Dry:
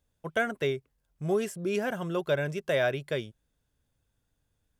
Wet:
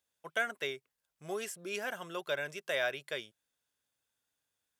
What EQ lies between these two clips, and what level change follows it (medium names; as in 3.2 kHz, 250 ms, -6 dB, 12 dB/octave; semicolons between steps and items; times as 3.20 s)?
high-pass 1.4 kHz 6 dB/octave; 0.0 dB